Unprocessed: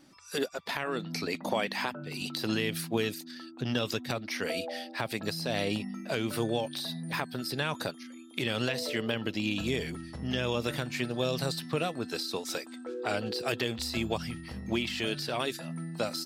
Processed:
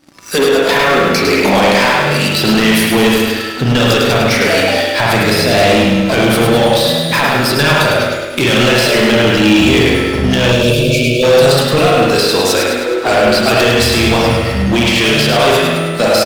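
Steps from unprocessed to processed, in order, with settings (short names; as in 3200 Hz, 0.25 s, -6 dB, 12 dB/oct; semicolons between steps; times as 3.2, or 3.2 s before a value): spring tank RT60 1.2 s, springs 41/51 ms, chirp 65 ms, DRR -1.5 dB; sample leveller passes 3; in parallel at -5 dB: overloaded stage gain 20.5 dB; on the sum: spectral gain 10.52–11.23, 660–2200 Hz -28 dB; feedback echo 0.104 s, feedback 51%, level -5 dB; gain +5.5 dB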